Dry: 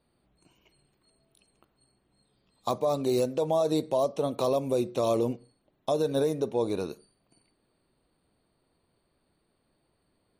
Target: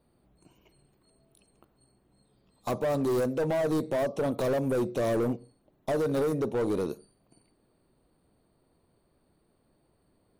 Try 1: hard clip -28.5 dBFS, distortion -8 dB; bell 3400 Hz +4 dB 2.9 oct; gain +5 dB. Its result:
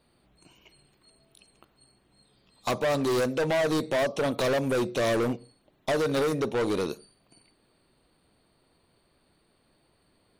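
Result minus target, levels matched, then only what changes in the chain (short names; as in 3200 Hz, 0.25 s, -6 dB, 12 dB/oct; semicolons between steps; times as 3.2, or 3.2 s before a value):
4000 Hz band +9.5 dB
change: bell 3400 Hz -7.5 dB 2.9 oct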